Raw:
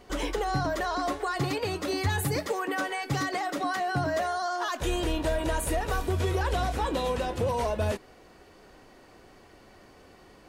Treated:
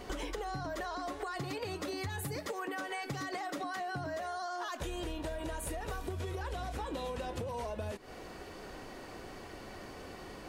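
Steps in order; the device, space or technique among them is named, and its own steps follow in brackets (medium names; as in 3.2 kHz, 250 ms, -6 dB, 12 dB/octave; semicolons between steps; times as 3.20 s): serial compression, peaks first (compression, threshold -36 dBFS, peak gain reduction 12.5 dB; compression 3:1, threshold -44 dBFS, peak gain reduction 8 dB); trim +6.5 dB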